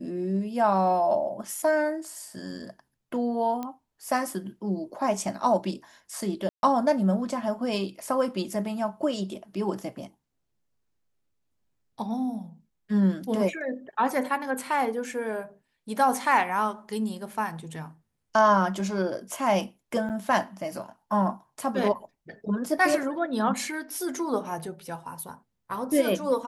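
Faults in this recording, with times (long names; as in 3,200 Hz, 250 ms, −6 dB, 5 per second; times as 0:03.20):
0:03.63: click −20 dBFS
0:06.49–0:06.63: drop-out 141 ms
0:20.09–0:20.10: drop-out 8.3 ms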